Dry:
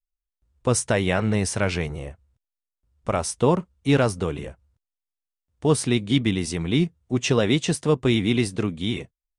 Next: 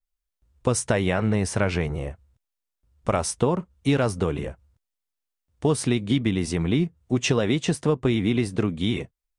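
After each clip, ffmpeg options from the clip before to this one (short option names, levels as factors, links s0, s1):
-af "acompressor=threshold=0.0891:ratio=6,adynamicequalizer=threshold=0.00501:dfrequency=2400:dqfactor=0.7:tfrequency=2400:tqfactor=0.7:attack=5:release=100:ratio=0.375:range=3.5:mode=cutabove:tftype=highshelf,volume=1.5"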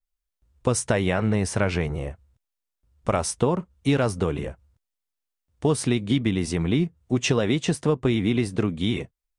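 -af anull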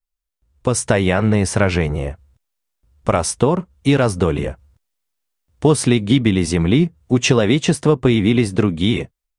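-af "dynaudnorm=f=450:g=3:m=3.76"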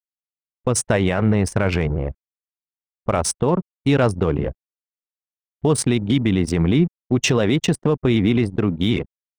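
-af "aeval=exprs='val(0)*gte(abs(val(0)),0.0299)':c=same,anlmdn=1580,alimiter=level_in=2.24:limit=0.891:release=50:level=0:latency=1,volume=0.447"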